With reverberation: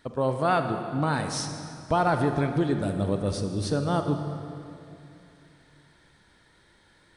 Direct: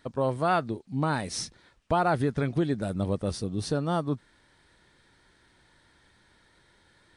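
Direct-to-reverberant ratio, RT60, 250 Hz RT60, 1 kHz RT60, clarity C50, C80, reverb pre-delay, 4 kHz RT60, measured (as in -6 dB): 6.0 dB, 2.8 s, 3.2 s, 2.7 s, 6.5 dB, 7.5 dB, 34 ms, 2.0 s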